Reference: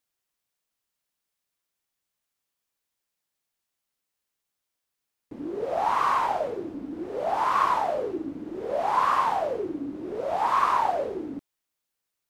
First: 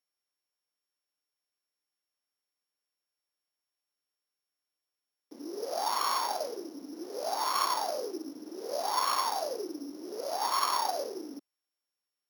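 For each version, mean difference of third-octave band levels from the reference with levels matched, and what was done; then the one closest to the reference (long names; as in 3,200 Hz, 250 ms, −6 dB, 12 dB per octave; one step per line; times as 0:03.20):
8.5 dB: samples sorted by size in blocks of 8 samples
high-pass filter 250 Hz 24 dB per octave
level −6.5 dB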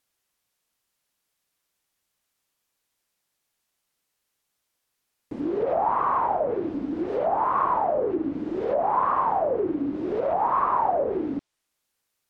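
5.5 dB: treble cut that deepens with the level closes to 990 Hz, closed at −23.5 dBFS
in parallel at +0.5 dB: brickwall limiter −25.5 dBFS, peak gain reduction 10.5 dB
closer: second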